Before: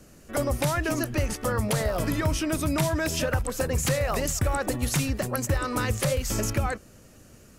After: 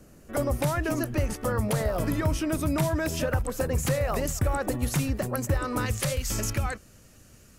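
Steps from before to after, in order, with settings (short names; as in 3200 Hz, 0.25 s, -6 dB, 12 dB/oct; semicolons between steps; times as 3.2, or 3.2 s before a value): bell 4600 Hz -5.5 dB 2.9 oct, from 5.86 s 430 Hz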